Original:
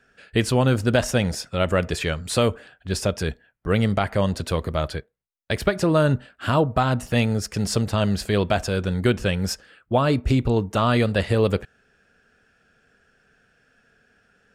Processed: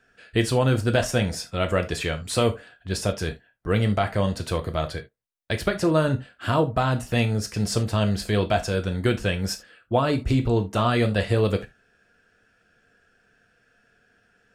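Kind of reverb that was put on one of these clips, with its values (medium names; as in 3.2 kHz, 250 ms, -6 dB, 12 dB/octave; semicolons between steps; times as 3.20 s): gated-style reverb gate 100 ms falling, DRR 5.5 dB; trim -2.5 dB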